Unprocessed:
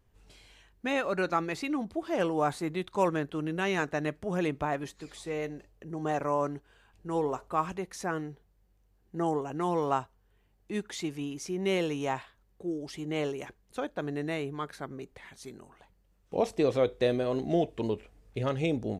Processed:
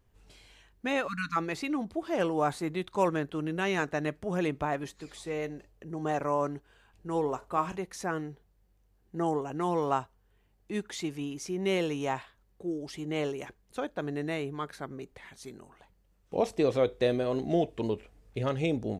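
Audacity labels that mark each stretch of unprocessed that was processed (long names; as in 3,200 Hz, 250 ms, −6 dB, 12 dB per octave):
1.070000	1.360000	time-frequency box erased 300–1,000 Hz
7.380000	7.800000	double-tracking delay 35 ms −11 dB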